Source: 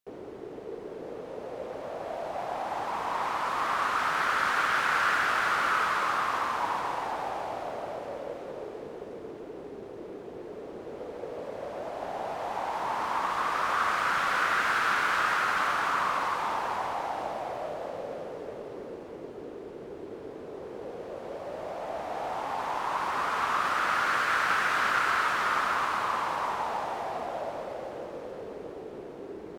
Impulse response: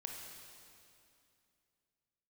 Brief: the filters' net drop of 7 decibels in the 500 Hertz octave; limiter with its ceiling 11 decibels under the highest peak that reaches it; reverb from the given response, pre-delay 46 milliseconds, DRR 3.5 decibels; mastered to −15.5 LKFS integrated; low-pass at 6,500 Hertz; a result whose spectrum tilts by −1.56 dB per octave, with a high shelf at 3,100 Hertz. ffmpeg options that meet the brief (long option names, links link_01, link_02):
-filter_complex "[0:a]lowpass=6500,equalizer=frequency=500:width_type=o:gain=-9,highshelf=frequency=3100:gain=-6,alimiter=level_in=3dB:limit=-24dB:level=0:latency=1,volume=-3dB,asplit=2[link_01][link_02];[1:a]atrim=start_sample=2205,adelay=46[link_03];[link_02][link_03]afir=irnorm=-1:irlink=0,volume=-1.5dB[link_04];[link_01][link_04]amix=inputs=2:normalize=0,volume=20dB"